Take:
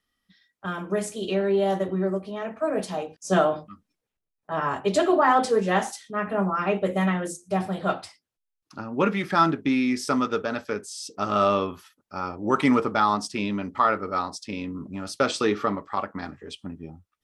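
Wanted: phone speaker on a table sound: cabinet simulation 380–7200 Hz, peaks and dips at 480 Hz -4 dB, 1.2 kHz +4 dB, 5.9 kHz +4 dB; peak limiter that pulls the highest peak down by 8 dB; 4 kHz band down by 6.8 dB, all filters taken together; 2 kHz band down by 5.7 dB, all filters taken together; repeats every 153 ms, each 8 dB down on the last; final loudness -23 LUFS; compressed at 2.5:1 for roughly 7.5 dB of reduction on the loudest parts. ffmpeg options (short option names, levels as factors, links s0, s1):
-af "equalizer=f=2000:t=o:g=-7,equalizer=f=4000:t=o:g=-8,acompressor=threshold=0.0398:ratio=2.5,alimiter=limit=0.0794:level=0:latency=1,highpass=f=380:w=0.5412,highpass=f=380:w=1.3066,equalizer=f=480:t=q:w=4:g=-4,equalizer=f=1200:t=q:w=4:g=4,equalizer=f=5900:t=q:w=4:g=4,lowpass=f=7200:w=0.5412,lowpass=f=7200:w=1.3066,aecho=1:1:153|306|459|612|765:0.398|0.159|0.0637|0.0255|0.0102,volume=3.98"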